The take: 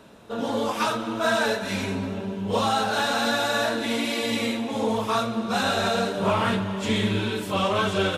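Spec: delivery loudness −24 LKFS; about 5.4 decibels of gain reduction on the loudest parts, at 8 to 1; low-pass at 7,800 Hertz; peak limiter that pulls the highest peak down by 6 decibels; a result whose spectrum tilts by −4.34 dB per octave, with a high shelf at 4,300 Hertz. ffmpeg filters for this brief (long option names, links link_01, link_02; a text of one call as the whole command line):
ffmpeg -i in.wav -af "lowpass=7800,highshelf=frequency=4300:gain=4.5,acompressor=threshold=-24dB:ratio=8,volume=5.5dB,alimiter=limit=-15.5dB:level=0:latency=1" out.wav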